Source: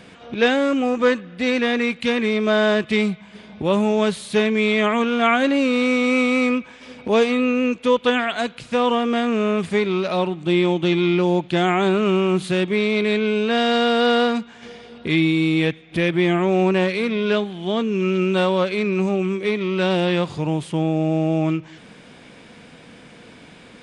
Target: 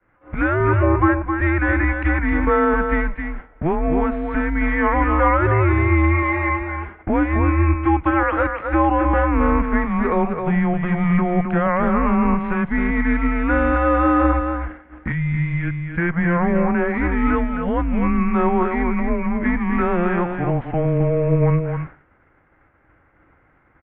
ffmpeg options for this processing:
ffmpeg -i in.wav -filter_complex "[0:a]equalizer=frequency=190:width_type=o:width=0.74:gain=8.5,acrossover=split=480|780[link_01][link_02][link_03];[link_03]acontrast=77[link_04];[link_01][link_02][link_04]amix=inputs=3:normalize=0,alimiter=limit=-9.5dB:level=0:latency=1:release=428,asplit=2[link_05][link_06];[link_06]aecho=0:1:264:0.501[link_07];[link_05][link_07]amix=inputs=2:normalize=0,highpass=frequency=250:width_type=q:width=0.5412,highpass=frequency=250:width_type=q:width=1.307,lowpass=frequency=2000:width_type=q:width=0.5176,lowpass=frequency=2000:width_type=q:width=0.7071,lowpass=frequency=2000:width_type=q:width=1.932,afreqshift=-170,asettb=1/sr,asplit=3[link_08][link_09][link_10];[link_08]atrim=end=6.224[link_11];[link_09]atrim=start=6.22:end=7.03,asetpts=PTS-STARTPTS,afade=type=in:duration=0.004:curve=qsin,afade=type=out:start_time=0.806:duration=0.004:curve=qsin,aecho=1:1:4.9:0.75,atrim=end_sample=35721[link_12];[link_10]atrim=start=7.026[link_13];[link_11][link_12]acrossfade=duration=0.004:curve1=hsin:curve2=qsin[link_14];[link_14][link_13]acrossfade=duration=0.004:curve1=qsin:curve2=hsin,asettb=1/sr,asplit=3[link_15][link_16][link_17];[link_15]atrim=end=15.124[link_18];[link_16]atrim=start=15.12:end=15.98,asetpts=PTS-STARTPTS,afade=type=in:duration=0.004:curve=qsin,afade=type=out:start_time=0.856:duration=0.004:curve=qsin,equalizer=frequency=720:width_type=o:width=2.4:gain=-12[link_19];[link_17]atrim=start=15.976[link_20];[link_18][link_19]acrossfade=duration=0.004:curve1=hsin:curve2=qsin[link_21];[link_21][link_20]acrossfade=duration=0.004:curve1=qsin:curve2=hsin,agate=range=-33dB:threshold=-30dB:ratio=3:detection=peak,volume=3dB" out.wav

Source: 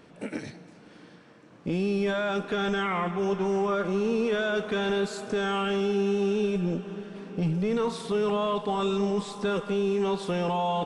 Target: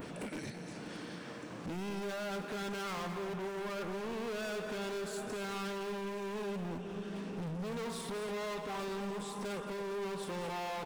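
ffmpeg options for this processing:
ffmpeg -i in.wav -filter_complex "[0:a]adynamicequalizer=threshold=0.00251:dfrequency=5000:dqfactor=0.84:tfrequency=5000:tqfactor=0.84:attack=5:release=100:ratio=0.375:range=3.5:mode=cutabove:tftype=bell,acompressor=mode=upward:threshold=-29dB:ratio=2.5,volume=33.5dB,asoftclip=hard,volume=-33.5dB,crystalizer=i=1:c=0,asplit=2[link_01][link_02];[link_02]aecho=0:1:219:0.335[link_03];[link_01][link_03]amix=inputs=2:normalize=0,volume=-4.5dB" out.wav

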